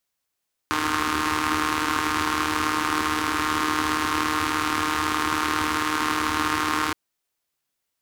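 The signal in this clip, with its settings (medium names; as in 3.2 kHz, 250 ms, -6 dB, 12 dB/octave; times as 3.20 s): four-cylinder engine model, steady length 6.22 s, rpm 4600, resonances 90/300/1100 Hz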